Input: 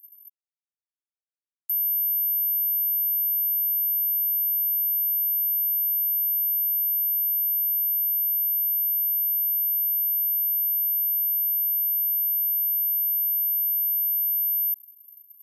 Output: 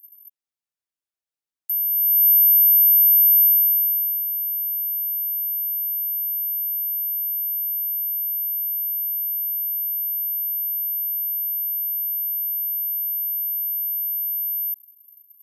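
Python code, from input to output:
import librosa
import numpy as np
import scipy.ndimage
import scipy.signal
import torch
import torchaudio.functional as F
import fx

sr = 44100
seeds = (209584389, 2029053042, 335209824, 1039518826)

y = fx.gain(x, sr, db=fx.line((1.88, 2.0), (2.28, 10.0), (3.43, 10.0), (4.25, -1.0)))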